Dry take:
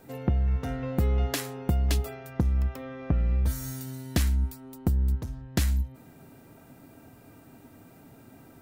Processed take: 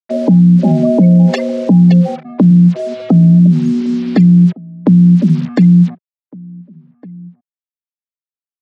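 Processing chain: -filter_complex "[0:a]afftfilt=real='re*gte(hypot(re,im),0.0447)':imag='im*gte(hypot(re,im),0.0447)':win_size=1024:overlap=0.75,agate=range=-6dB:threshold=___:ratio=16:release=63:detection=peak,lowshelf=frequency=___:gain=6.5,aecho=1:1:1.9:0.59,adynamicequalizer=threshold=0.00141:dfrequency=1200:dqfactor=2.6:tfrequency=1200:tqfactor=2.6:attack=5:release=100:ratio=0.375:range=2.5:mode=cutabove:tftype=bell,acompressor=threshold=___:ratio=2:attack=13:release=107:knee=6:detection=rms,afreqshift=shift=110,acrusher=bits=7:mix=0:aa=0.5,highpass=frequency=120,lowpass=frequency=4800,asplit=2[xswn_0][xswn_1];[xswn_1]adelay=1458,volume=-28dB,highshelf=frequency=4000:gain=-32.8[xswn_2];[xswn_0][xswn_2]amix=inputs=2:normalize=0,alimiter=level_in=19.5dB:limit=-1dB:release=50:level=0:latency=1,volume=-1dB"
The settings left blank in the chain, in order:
-45dB, 330, -23dB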